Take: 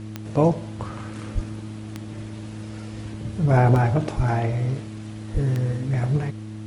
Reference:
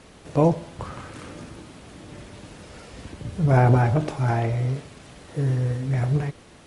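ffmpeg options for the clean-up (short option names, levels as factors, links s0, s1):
-filter_complex "[0:a]adeclick=t=4,bandreject=f=107.5:t=h:w=4,bandreject=f=215:t=h:w=4,bandreject=f=322.5:t=h:w=4,asplit=3[s0][s1][s2];[s0]afade=t=out:st=1.34:d=0.02[s3];[s1]highpass=f=140:w=0.5412,highpass=f=140:w=1.3066,afade=t=in:st=1.34:d=0.02,afade=t=out:st=1.46:d=0.02[s4];[s2]afade=t=in:st=1.46:d=0.02[s5];[s3][s4][s5]amix=inputs=3:normalize=0,asplit=3[s6][s7][s8];[s6]afade=t=out:st=4.16:d=0.02[s9];[s7]highpass=f=140:w=0.5412,highpass=f=140:w=1.3066,afade=t=in:st=4.16:d=0.02,afade=t=out:st=4.28:d=0.02[s10];[s8]afade=t=in:st=4.28:d=0.02[s11];[s9][s10][s11]amix=inputs=3:normalize=0,asplit=3[s12][s13][s14];[s12]afade=t=out:st=5.33:d=0.02[s15];[s13]highpass=f=140:w=0.5412,highpass=f=140:w=1.3066,afade=t=in:st=5.33:d=0.02,afade=t=out:st=5.45:d=0.02[s16];[s14]afade=t=in:st=5.45:d=0.02[s17];[s15][s16][s17]amix=inputs=3:normalize=0"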